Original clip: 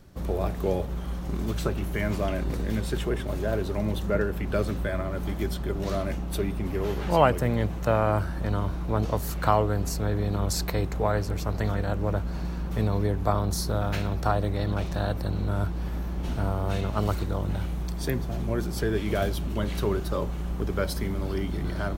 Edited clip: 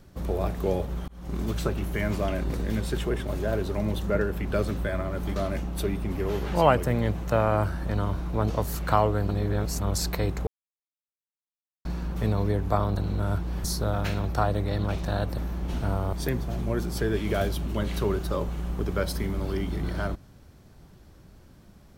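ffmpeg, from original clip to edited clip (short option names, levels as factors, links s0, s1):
-filter_complex "[0:a]asplit=11[s0][s1][s2][s3][s4][s5][s6][s7][s8][s9][s10];[s0]atrim=end=1.08,asetpts=PTS-STARTPTS,afade=t=out:st=1.076:d=0.004:c=hsin[s11];[s1]atrim=start=1.08:end=5.362,asetpts=PTS-STARTPTS,afade=t=in:d=0.3[s12];[s2]atrim=start=5.908:end=9.842[s13];[s3]atrim=start=9.838:end=10.362,asetpts=PTS-STARTPTS,areverse[s14];[s4]atrim=start=10.358:end=11.02,asetpts=PTS-STARTPTS,afade=t=out:st=0.658:d=0.004:c=hsin[s15];[s5]atrim=start=11.02:end=12.4,asetpts=PTS-STARTPTS,volume=0[s16];[s6]atrim=start=12.4:end=13.522,asetpts=PTS-STARTPTS,afade=t=in:d=0.004:c=hsin[s17];[s7]atrim=start=15.258:end=15.932[s18];[s8]atrim=start=13.518:end=15.262[s19];[s9]atrim=start=15.928:end=16.682[s20];[s10]atrim=start=17.938[s21];[s11][s12]concat=n=2:v=0:a=1[s22];[s22][s13]acrossfade=d=0.004:c1=hsin:c2=hsin[s23];[s23][s14]acrossfade=d=0.004:c1=hsin:c2=hsin[s24];[s15][s16][s17]concat=n=3:v=0:a=1[s25];[s24][s25]acrossfade=d=0.004:c1=hsin:c2=hsin[s26];[s26][s18]acrossfade=d=0.004:c1=hsin:c2=hsin[s27];[s27][s19]acrossfade=d=0.004:c1=hsin:c2=hsin[s28];[s28][s20]acrossfade=d=0.004:c1=hsin:c2=hsin[s29];[s29][s21]acrossfade=d=0.004:c1=hsin:c2=hsin"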